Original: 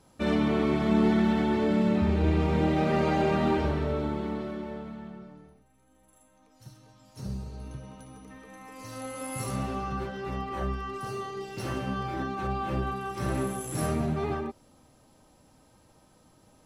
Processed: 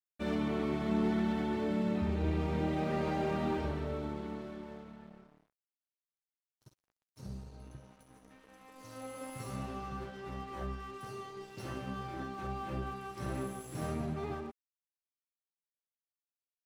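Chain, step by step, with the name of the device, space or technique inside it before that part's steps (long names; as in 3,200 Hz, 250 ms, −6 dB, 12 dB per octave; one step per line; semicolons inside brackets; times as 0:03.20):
0:08.10–0:09.30: parametric band 520 Hz +3.5 dB 2.1 octaves
early transistor amplifier (dead-zone distortion −48.5 dBFS; slew-rate limiting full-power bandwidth 55 Hz)
level −7.5 dB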